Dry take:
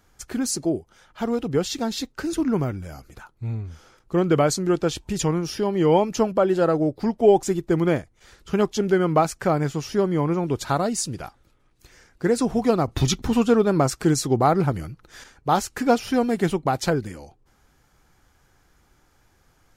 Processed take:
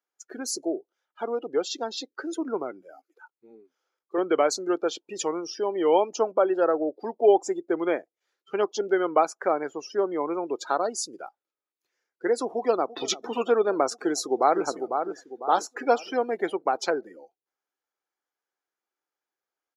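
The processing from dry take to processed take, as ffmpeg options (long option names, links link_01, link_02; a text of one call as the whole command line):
ffmpeg -i in.wav -filter_complex "[0:a]asettb=1/sr,asplit=3[link_01][link_02][link_03];[link_01]atrim=end=2.814[link_04];[link_02]atrim=start=2.81:end=4.18,asetpts=PTS-STARTPTS,afade=type=in:duration=0.004:curve=qsin,afade=type=out:start_time=1.366:duration=0.004:curve=qsin,highpass=250[link_05];[link_03]atrim=start=4.176[link_06];[link_04][link_05]acrossfade=duration=0.004:curve1=hsin:curve2=qsin[link_07];[link_07][link_06]acrossfade=duration=0.004:curve1=qsin:curve2=hsin,asplit=2[link_08][link_09];[link_09]afade=type=in:start_time=12.46:duration=0.01,afade=type=out:start_time=13.01:duration=0.01,aecho=0:1:340|680|1020|1360|1700|2040|2380|2720|3060|3400|3740|4080:0.149624|0.119699|0.0957591|0.0766073|0.0612858|0.0490286|0.0392229|0.0313783|0.0251027|0.0200821|0.0160657|0.0128526[link_10];[link_08][link_10]amix=inputs=2:normalize=0,asplit=2[link_11][link_12];[link_12]afade=type=in:start_time=13.92:duration=0.01,afade=type=out:start_time=14.62:duration=0.01,aecho=0:1:500|1000|1500|2000|2500:0.473151|0.189261|0.0757042|0.0302817|0.0121127[link_13];[link_11][link_13]amix=inputs=2:normalize=0,afftdn=noise_reduction=25:noise_floor=-35,highpass=frequency=350:width=0.5412,highpass=frequency=350:width=1.3066,equalizer=frequency=8500:width=6.1:gain=-13.5,volume=-1.5dB" out.wav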